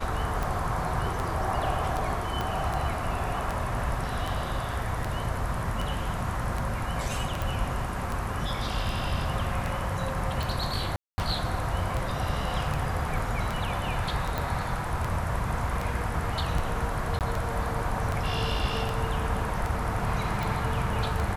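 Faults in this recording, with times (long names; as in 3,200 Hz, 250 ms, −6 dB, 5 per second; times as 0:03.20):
scratch tick 78 rpm
0:02.41: click −16 dBFS
0:07.42: click
0:10.96–0:11.18: drop-out 220 ms
0:14.38: click
0:17.19–0:17.21: drop-out 18 ms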